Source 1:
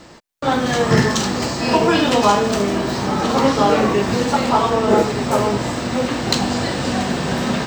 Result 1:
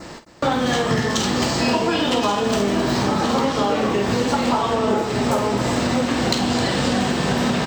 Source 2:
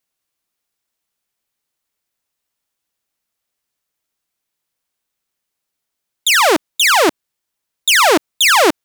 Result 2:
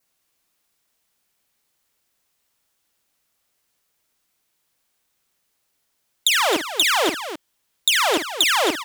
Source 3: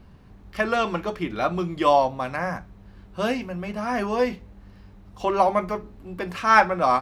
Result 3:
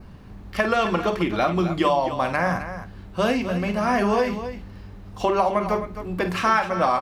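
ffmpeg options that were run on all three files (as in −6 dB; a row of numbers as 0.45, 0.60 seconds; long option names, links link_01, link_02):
-af "adynamicequalizer=threshold=0.02:dfrequency=3200:dqfactor=3.8:tfrequency=3200:tqfactor=3.8:attack=5:release=100:ratio=0.375:range=2.5:mode=boostabove:tftype=bell,acompressor=threshold=-23dB:ratio=12,aecho=1:1:49.56|262.4:0.316|0.282,volume=6dB"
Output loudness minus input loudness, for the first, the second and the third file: −2.0, −6.5, +0.5 LU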